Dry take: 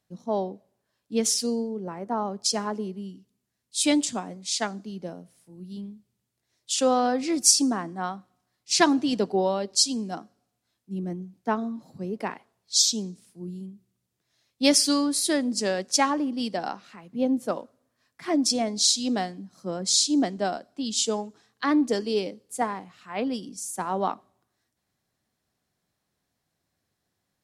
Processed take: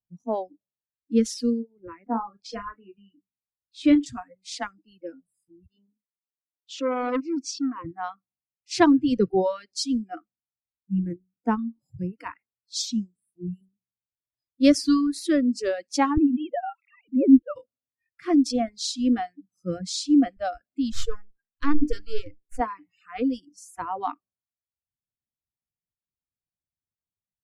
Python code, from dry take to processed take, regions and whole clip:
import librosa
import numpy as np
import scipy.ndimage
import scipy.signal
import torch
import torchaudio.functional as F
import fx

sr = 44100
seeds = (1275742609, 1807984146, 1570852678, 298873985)

y = fx.chain(x, sr, fx.lowpass(hz=3200.0, slope=12),
    fx.doubler(ms=35.0, db=-8), at=(2.03, 4.06))
y = fx.chain(y, sr, fx.tremolo_shape(shape='saw_up', hz=2.6, depth_pct=75),
    fx.cabinet(low_hz=230.0, low_slope=12, high_hz=6000.0, hz=(270.0, 490.0, 960.0, 1700.0, 4900.0), db=(6, 7, 5, -9, -4)),
    fx.transformer_sat(knee_hz=1400.0), at=(5.66, 7.85))
y = fx.chain(y, sr, fx.sine_speech(),
    fx.low_shelf(hz=190.0, db=10.0),
    fx.band_squash(depth_pct=40), at=(16.17, 17.56))
y = fx.chain(y, sr, fx.halfwave_gain(db=-7.0),
    fx.hum_notches(base_hz=60, count=7),
    fx.dynamic_eq(hz=570.0, q=1.6, threshold_db=-41.0, ratio=4.0, max_db=-4), at=(20.92, 22.6))
y = fx.dereverb_blind(y, sr, rt60_s=0.93)
y = fx.riaa(y, sr, side='playback')
y = fx.noise_reduce_blind(y, sr, reduce_db=28)